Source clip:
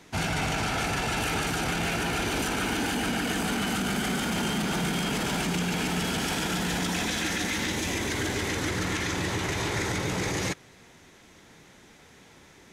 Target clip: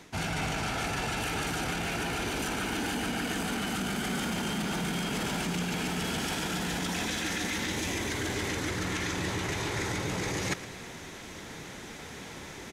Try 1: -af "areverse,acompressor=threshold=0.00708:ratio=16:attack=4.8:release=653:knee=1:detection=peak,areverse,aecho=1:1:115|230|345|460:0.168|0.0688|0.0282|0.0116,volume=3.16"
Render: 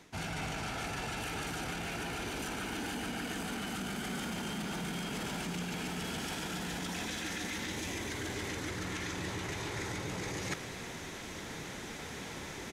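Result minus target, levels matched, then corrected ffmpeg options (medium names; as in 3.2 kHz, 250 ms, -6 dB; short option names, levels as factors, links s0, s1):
compression: peak gain reduction +6 dB
-af "areverse,acompressor=threshold=0.015:ratio=16:attack=4.8:release=653:knee=1:detection=peak,areverse,aecho=1:1:115|230|345|460:0.168|0.0688|0.0282|0.0116,volume=3.16"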